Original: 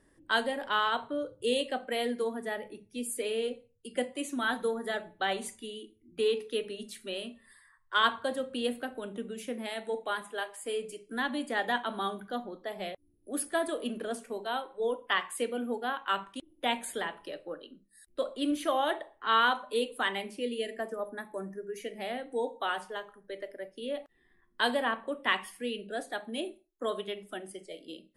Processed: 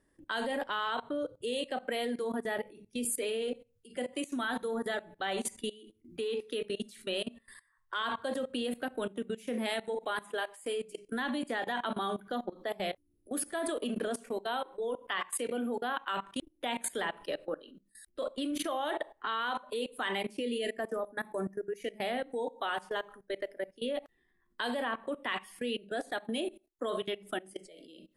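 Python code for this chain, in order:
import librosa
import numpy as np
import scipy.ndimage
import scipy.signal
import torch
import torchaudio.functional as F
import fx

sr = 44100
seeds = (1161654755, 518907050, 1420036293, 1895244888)

y = fx.level_steps(x, sr, step_db=20)
y = F.gain(torch.from_numpy(y), 7.0).numpy()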